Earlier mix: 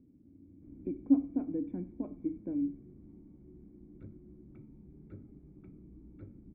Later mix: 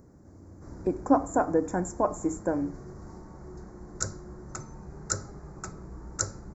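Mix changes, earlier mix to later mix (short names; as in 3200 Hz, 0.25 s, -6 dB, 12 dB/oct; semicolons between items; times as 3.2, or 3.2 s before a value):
background: remove air absorption 290 m; master: remove vocal tract filter i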